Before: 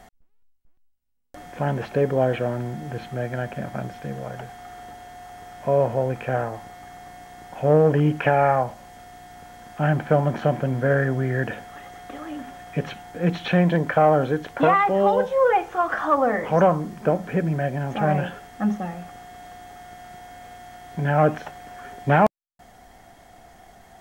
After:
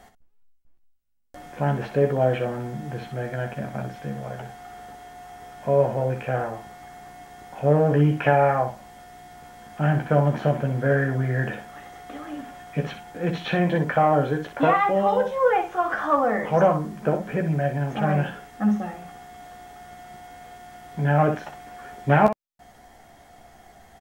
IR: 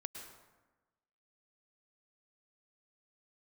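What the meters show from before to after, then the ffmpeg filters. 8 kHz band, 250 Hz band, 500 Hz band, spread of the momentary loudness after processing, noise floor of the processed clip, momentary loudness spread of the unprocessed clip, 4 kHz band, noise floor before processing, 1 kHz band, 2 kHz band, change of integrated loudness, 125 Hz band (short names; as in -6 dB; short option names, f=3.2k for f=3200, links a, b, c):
n/a, -0.5 dB, -1.5 dB, 22 LU, -55 dBFS, 23 LU, -1.0 dB, -57 dBFS, -1.0 dB, -1.0 dB, -1.0 dB, +0.5 dB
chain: -af "aecho=1:1:14|62:0.531|0.376,volume=-2.5dB"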